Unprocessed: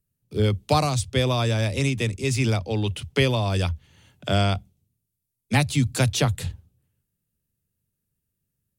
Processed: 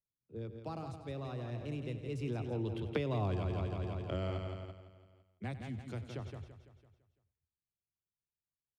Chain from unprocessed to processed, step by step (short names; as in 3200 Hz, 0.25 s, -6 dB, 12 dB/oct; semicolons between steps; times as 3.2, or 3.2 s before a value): Wiener smoothing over 9 samples; Doppler pass-by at 3.26, 23 m/s, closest 1.4 m; feedback echo 0.168 s, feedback 48%, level -7.5 dB; in parallel at -2 dB: level quantiser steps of 20 dB; on the sum: LPF 1600 Hz 6 dB/oct; bell 350 Hz +7 dB 0.45 oct; echo 94 ms -15 dB; compressor 12:1, threshold -40 dBFS, peak gain reduction 19 dB; gain +8.5 dB